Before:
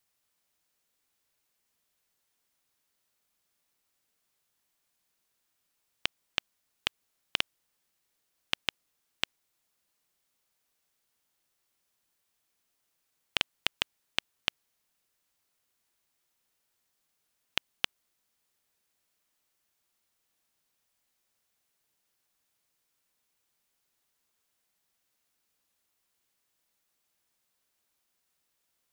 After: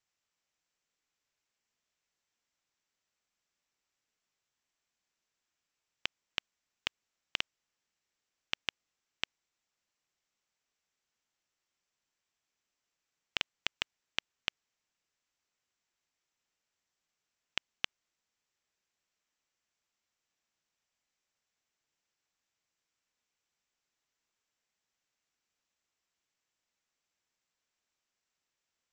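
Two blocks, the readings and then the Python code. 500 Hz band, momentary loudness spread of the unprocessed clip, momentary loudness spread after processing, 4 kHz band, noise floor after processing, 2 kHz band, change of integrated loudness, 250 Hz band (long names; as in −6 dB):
−6.0 dB, 4 LU, 4 LU, −5.0 dB, below −85 dBFS, −4.0 dB, −4.5 dB, −6.5 dB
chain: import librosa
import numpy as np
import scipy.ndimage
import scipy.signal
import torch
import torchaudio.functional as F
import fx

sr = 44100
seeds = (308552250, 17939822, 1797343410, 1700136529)

y = scipy.signal.sosfilt(scipy.signal.cheby1(6, 3, 7800.0, 'lowpass', fs=sr, output='sos'), x)
y = F.gain(torch.from_numpy(y), -3.5).numpy()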